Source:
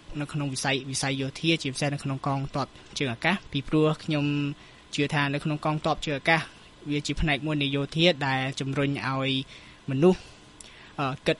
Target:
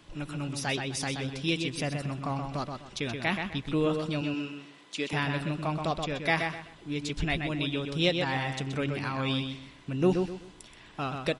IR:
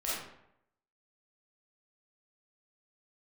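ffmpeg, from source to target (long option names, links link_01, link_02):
-filter_complex "[0:a]asettb=1/sr,asplit=3[link_01][link_02][link_03];[link_01]atrim=end=4.214[link_04];[link_02]atrim=start=4.21:end=5.13,asetpts=PTS-STARTPTS,afade=type=in:duration=0.004:curve=qsin,afade=type=out:start_time=0.916:duration=0.004:curve=qsin,highpass=280[link_05];[link_03]atrim=start=5.126[link_06];[link_04][link_05]acrossfade=duration=0.004:curve1=hsin:curve2=qsin[link_07];[link_07][link_06]acrossfade=duration=0.004:curve1=qsin:curve2=hsin,asplit=2[link_08][link_09];[link_09]adelay=127,lowpass=frequency=4300:poles=1,volume=-5dB,asplit=2[link_10][link_11];[link_11]adelay=127,lowpass=frequency=4300:poles=1,volume=0.29,asplit=2[link_12][link_13];[link_13]adelay=127,lowpass=frequency=4300:poles=1,volume=0.29,asplit=2[link_14][link_15];[link_15]adelay=127,lowpass=frequency=4300:poles=1,volume=0.29[link_16];[link_08][link_10][link_12][link_14][link_16]amix=inputs=5:normalize=0,volume=-5dB"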